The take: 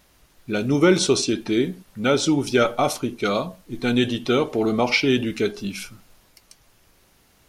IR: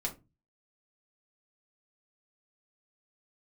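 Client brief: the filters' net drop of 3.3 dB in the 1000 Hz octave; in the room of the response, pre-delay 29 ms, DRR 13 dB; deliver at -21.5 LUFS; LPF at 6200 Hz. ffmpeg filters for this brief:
-filter_complex "[0:a]lowpass=6.2k,equalizer=f=1k:t=o:g=-5,asplit=2[a][b];[1:a]atrim=start_sample=2205,adelay=29[c];[b][c]afir=irnorm=-1:irlink=0,volume=-15.5dB[d];[a][d]amix=inputs=2:normalize=0,volume=0.5dB"

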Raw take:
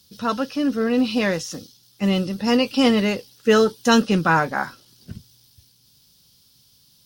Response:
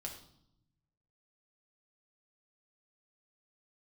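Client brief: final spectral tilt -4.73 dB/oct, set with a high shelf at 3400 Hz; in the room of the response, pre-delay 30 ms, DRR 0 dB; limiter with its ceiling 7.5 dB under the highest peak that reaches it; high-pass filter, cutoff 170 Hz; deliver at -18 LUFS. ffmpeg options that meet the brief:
-filter_complex "[0:a]highpass=170,highshelf=f=3.4k:g=3.5,alimiter=limit=-11dB:level=0:latency=1,asplit=2[a][b];[1:a]atrim=start_sample=2205,adelay=30[c];[b][c]afir=irnorm=-1:irlink=0,volume=2dB[d];[a][d]amix=inputs=2:normalize=0,volume=1.5dB"

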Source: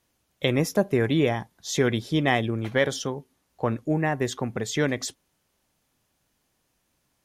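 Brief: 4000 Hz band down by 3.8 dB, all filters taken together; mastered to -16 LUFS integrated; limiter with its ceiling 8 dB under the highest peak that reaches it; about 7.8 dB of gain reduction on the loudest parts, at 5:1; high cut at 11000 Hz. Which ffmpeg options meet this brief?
-af "lowpass=11k,equalizer=f=4k:t=o:g=-5,acompressor=threshold=-26dB:ratio=5,volume=17.5dB,alimiter=limit=-4dB:level=0:latency=1"

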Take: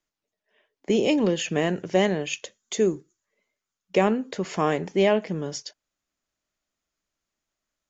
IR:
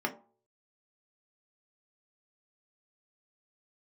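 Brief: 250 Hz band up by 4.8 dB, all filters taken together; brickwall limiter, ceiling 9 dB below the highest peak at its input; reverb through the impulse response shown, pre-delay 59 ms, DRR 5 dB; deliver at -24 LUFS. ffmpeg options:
-filter_complex "[0:a]equalizer=f=250:t=o:g=6.5,alimiter=limit=-15.5dB:level=0:latency=1,asplit=2[a][b];[1:a]atrim=start_sample=2205,adelay=59[c];[b][c]afir=irnorm=-1:irlink=0,volume=-12dB[d];[a][d]amix=inputs=2:normalize=0,volume=1dB"

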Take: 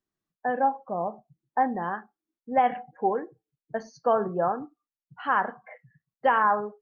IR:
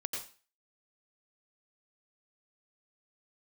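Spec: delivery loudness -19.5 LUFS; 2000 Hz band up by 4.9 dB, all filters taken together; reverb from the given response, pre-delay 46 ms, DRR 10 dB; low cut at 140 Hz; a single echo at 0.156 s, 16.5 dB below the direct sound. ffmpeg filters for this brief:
-filter_complex "[0:a]highpass=140,equalizer=f=2k:t=o:g=6.5,aecho=1:1:156:0.15,asplit=2[a][b];[1:a]atrim=start_sample=2205,adelay=46[c];[b][c]afir=irnorm=-1:irlink=0,volume=-11.5dB[d];[a][d]amix=inputs=2:normalize=0,volume=6.5dB"

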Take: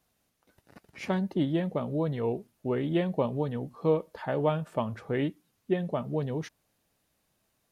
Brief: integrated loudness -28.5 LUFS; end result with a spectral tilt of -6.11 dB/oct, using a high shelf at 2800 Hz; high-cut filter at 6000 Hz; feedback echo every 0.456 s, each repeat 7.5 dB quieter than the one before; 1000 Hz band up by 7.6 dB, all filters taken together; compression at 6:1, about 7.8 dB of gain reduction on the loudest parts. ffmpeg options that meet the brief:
-af "lowpass=6k,equalizer=f=1k:t=o:g=8.5,highshelf=f=2.8k:g=6.5,acompressor=threshold=-26dB:ratio=6,aecho=1:1:456|912|1368|1824|2280:0.422|0.177|0.0744|0.0312|0.0131,volume=4dB"

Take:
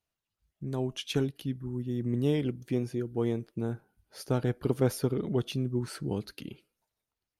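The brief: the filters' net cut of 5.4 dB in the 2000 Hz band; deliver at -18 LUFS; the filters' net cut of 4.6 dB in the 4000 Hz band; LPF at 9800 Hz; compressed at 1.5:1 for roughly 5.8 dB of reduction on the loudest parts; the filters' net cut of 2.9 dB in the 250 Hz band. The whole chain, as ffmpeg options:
-af "lowpass=9.8k,equalizer=f=250:t=o:g=-3.5,equalizer=f=2k:t=o:g=-6.5,equalizer=f=4k:t=o:g=-3.5,acompressor=threshold=-38dB:ratio=1.5,volume=20dB"

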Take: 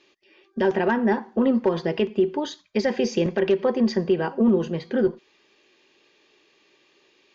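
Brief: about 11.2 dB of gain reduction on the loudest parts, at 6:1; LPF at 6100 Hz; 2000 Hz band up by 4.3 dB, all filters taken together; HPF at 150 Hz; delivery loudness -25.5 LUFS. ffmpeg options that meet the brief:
-af "highpass=150,lowpass=6.1k,equalizer=f=2k:t=o:g=5.5,acompressor=threshold=-28dB:ratio=6,volume=7dB"

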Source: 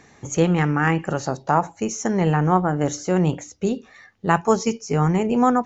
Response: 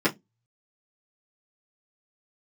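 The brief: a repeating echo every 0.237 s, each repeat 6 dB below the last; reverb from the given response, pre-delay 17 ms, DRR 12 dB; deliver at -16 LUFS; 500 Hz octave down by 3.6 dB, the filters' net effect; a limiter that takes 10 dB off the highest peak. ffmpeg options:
-filter_complex "[0:a]equalizer=f=500:t=o:g=-4.5,alimiter=limit=-13.5dB:level=0:latency=1,aecho=1:1:237|474|711|948|1185|1422:0.501|0.251|0.125|0.0626|0.0313|0.0157,asplit=2[a][b];[1:a]atrim=start_sample=2205,adelay=17[c];[b][c]afir=irnorm=-1:irlink=0,volume=-26.5dB[d];[a][d]amix=inputs=2:normalize=0,volume=7.5dB"

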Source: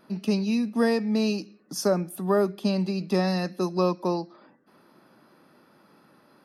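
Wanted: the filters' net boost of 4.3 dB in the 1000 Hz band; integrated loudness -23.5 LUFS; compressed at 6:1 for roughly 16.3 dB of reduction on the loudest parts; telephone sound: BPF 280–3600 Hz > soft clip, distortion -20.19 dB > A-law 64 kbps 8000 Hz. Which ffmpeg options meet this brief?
-af "equalizer=f=1k:t=o:g=5.5,acompressor=threshold=-35dB:ratio=6,highpass=280,lowpass=3.6k,asoftclip=threshold=-30.5dB,volume=19dB" -ar 8000 -c:a pcm_alaw

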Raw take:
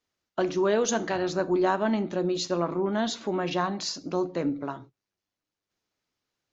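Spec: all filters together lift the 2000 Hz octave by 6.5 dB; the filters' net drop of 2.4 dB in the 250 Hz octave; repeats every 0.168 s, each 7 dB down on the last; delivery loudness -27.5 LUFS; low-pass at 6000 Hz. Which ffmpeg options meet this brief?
-af "lowpass=6k,equalizer=f=250:t=o:g=-4,equalizer=f=2k:t=o:g=9,aecho=1:1:168|336|504|672|840:0.447|0.201|0.0905|0.0407|0.0183,volume=-0.5dB"

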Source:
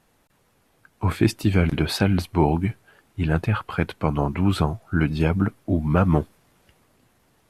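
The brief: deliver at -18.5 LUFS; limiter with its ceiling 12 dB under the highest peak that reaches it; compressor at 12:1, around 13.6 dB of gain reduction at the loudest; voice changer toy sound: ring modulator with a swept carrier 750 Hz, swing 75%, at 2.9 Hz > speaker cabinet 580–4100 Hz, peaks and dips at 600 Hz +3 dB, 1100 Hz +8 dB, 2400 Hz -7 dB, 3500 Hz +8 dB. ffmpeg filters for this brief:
-af "acompressor=threshold=-27dB:ratio=12,alimiter=level_in=2dB:limit=-24dB:level=0:latency=1,volume=-2dB,aeval=exprs='val(0)*sin(2*PI*750*n/s+750*0.75/2.9*sin(2*PI*2.9*n/s))':c=same,highpass=580,equalizer=f=600:t=q:w=4:g=3,equalizer=f=1.1k:t=q:w=4:g=8,equalizer=f=2.4k:t=q:w=4:g=-7,equalizer=f=3.5k:t=q:w=4:g=8,lowpass=f=4.1k:w=0.5412,lowpass=f=4.1k:w=1.3066,volume=19dB"

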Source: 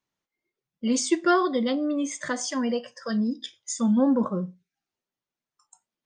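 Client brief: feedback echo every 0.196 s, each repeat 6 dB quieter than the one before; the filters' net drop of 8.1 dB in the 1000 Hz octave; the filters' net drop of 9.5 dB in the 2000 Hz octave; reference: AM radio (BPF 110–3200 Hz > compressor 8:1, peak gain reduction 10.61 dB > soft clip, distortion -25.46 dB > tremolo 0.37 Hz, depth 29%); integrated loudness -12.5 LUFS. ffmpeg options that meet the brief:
-af "highpass=110,lowpass=3.2k,equalizer=f=1k:t=o:g=-9,equalizer=f=2k:t=o:g=-8.5,aecho=1:1:196|392|588|784|980|1176:0.501|0.251|0.125|0.0626|0.0313|0.0157,acompressor=threshold=-27dB:ratio=8,asoftclip=threshold=-21dB,tremolo=f=0.37:d=0.29,volume=22dB"

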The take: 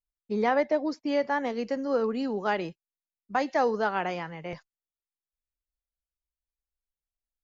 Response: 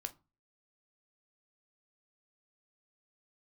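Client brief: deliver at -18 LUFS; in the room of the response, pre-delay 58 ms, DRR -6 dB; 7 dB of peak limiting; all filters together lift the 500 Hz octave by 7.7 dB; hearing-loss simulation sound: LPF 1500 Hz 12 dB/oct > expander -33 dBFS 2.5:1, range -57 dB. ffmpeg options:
-filter_complex "[0:a]equalizer=f=500:t=o:g=9,alimiter=limit=-15.5dB:level=0:latency=1,asplit=2[a][b];[1:a]atrim=start_sample=2205,adelay=58[c];[b][c]afir=irnorm=-1:irlink=0,volume=8.5dB[d];[a][d]amix=inputs=2:normalize=0,lowpass=1.5k,agate=range=-57dB:threshold=-33dB:ratio=2.5,volume=0.5dB"

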